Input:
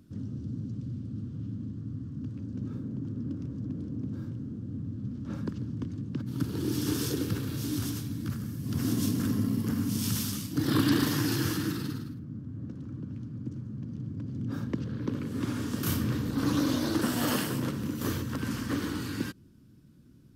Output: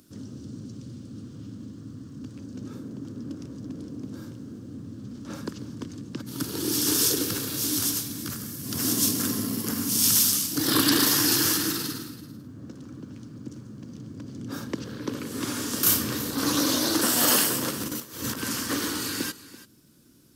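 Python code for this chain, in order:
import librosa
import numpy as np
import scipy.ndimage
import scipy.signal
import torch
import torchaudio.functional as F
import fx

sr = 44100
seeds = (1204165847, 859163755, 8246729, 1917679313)

y = fx.bass_treble(x, sr, bass_db=-13, treble_db=10)
y = fx.over_compress(y, sr, threshold_db=-40.0, ratio=-0.5, at=(17.8, 18.36), fade=0.02)
y = y + 10.0 ** (-17.0 / 20.0) * np.pad(y, (int(335 * sr / 1000.0), 0))[:len(y)]
y = F.gain(torch.from_numpy(y), 6.0).numpy()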